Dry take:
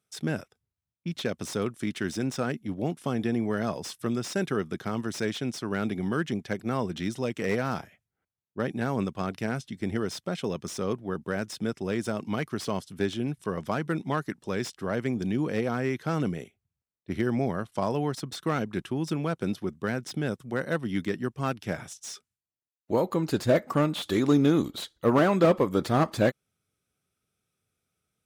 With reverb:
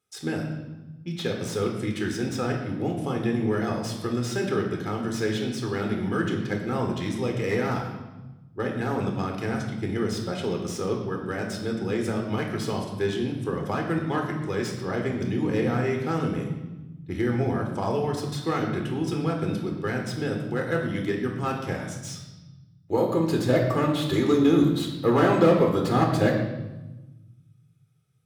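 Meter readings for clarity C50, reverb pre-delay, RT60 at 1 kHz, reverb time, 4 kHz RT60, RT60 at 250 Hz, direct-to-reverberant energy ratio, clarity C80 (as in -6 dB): 5.0 dB, 11 ms, 1.1 s, 1.1 s, 0.95 s, 1.8 s, 1.0 dB, 7.0 dB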